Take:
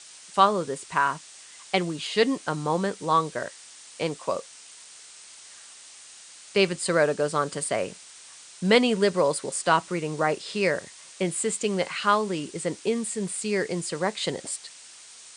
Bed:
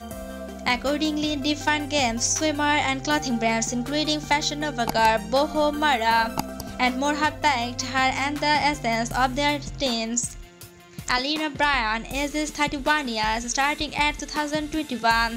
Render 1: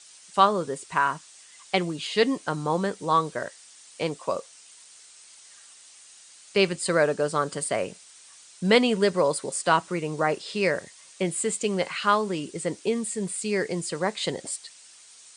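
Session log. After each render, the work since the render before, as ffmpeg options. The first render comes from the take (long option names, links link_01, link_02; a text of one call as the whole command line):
ffmpeg -i in.wav -af "afftdn=noise_reduction=6:noise_floor=-48" out.wav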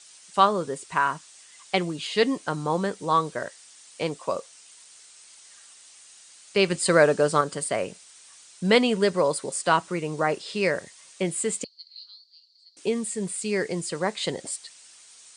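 ffmpeg -i in.wav -filter_complex "[0:a]asettb=1/sr,asplit=3[link_01][link_02][link_03];[link_01]atrim=end=11.644[link_04];[link_02]atrim=start=11.64:end=12.77,asetpts=PTS-STARTPTS,afade=type=in:duration=0.004:curve=qsin,afade=type=out:start_time=1.126:duration=0.004:curve=qsin,asuperpass=centerf=4400:order=4:qfactor=7.7[link_05];[link_03]atrim=start=12.766[link_06];[link_04][link_05]acrossfade=duration=0.004:curve1=hsin:curve2=qsin[link_07];[link_07][link_06]acrossfade=duration=0.004:curve1=qsin:curve2=hsin,asplit=3[link_08][link_09][link_10];[link_08]atrim=end=6.702[link_11];[link_09]atrim=start=6.698:end=7.412,asetpts=PTS-STARTPTS,volume=4dB[link_12];[link_10]atrim=start=7.408[link_13];[link_11][link_12]acrossfade=duration=0.004:curve1=hsin:curve2=hsin[link_14];[link_14][link_13]acrossfade=duration=0.004:curve1=hsin:curve2=hsin" out.wav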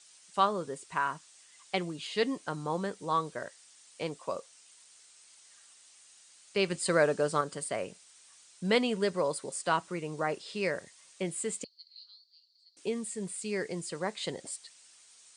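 ffmpeg -i in.wav -af "volume=-7.5dB" out.wav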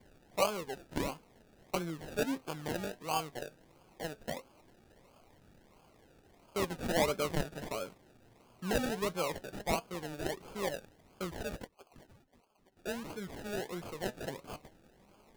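ffmpeg -i in.wav -af "acrusher=samples=33:mix=1:aa=0.000001:lfo=1:lforange=19.8:lforate=1.5,flanger=delay=0.4:depth=8.3:regen=72:speed=0.18:shape=triangular" out.wav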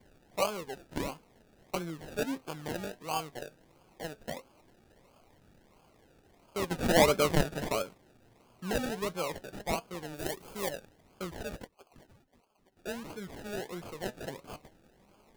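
ffmpeg -i in.wav -filter_complex "[0:a]asettb=1/sr,asplit=3[link_01][link_02][link_03];[link_01]atrim=end=10.164[link_04];[link_02]atrim=start=10.16:end=10.7,asetpts=PTS-STARTPTS,afade=type=in:duration=0.004:curve=qsin,afade=type=out:start_time=0.536:duration=0.004:curve=qsin,highshelf=frequency=7300:gain=10[link_05];[link_03]atrim=start=10.696[link_06];[link_04][link_05]acrossfade=duration=0.004:curve1=hsin:curve2=qsin[link_07];[link_07][link_06]acrossfade=duration=0.004:curve1=qsin:curve2=hsin,asplit=3[link_08][link_09][link_10];[link_08]atrim=end=6.712[link_11];[link_09]atrim=start=6.708:end=7.822,asetpts=PTS-STARTPTS,volume=7dB[link_12];[link_10]atrim=start=7.818[link_13];[link_11][link_12]acrossfade=duration=0.004:curve1=hsin:curve2=hsin[link_14];[link_14][link_13]acrossfade=duration=0.004:curve1=hsin:curve2=hsin" out.wav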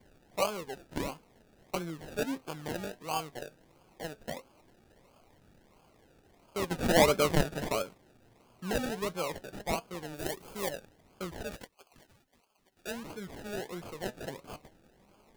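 ffmpeg -i in.wav -filter_complex "[0:a]asettb=1/sr,asplit=3[link_01][link_02][link_03];[link_01]atrim=end=11.514[link_04];[link_02]atrim=start=11.51:end=12.91,asetpts=PTS-STARTPTS,afade=type=in:duration=0.004:curve=qsin,afade=type=out:start_time=1.396:duration=0.004:curve=qsin,tiltshelf=frequency=1200:gain=-4.5[link_05];[link_03]atrim=start=12.906[link_06];[link_04][link_05]acrossfade=duration=0.004:curve1=hsin:curve2=qsin[link_07];[link_07][link_06]acrossfade=duration=0.004:curve1=qsin:curve2=hsin" out.wav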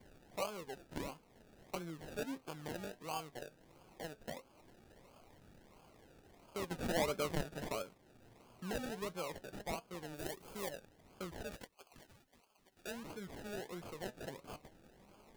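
ffmpeg -i in.wav -af "acompressor=threshold=-53dB:ratio=1.5" out.wav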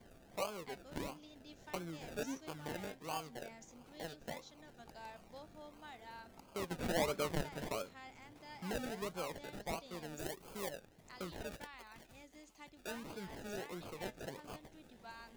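ffmpeg -i in.wav -i bed.wav -filter_complex "[1:a]volume=-32.5dB[link_01];[0:a][link_01]amix=inputs=2:normalize=0" out.wav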